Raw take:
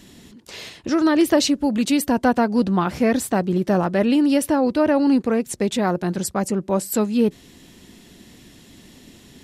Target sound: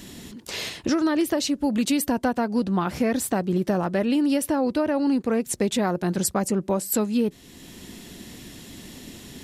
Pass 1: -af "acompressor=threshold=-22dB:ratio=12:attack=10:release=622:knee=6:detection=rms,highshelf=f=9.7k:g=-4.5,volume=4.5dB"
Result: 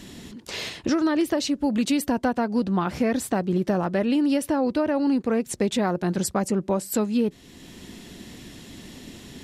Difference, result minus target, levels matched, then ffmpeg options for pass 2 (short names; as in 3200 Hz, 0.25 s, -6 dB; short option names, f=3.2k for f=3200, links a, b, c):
8000 Hz band -3.5 dB
-af "acompressor=threshold=-22dB:ratio=12:attack=10:release=622:knee=6:detection=rms,highshelf=f=9.7k:g=5.5,volume=4.5dB"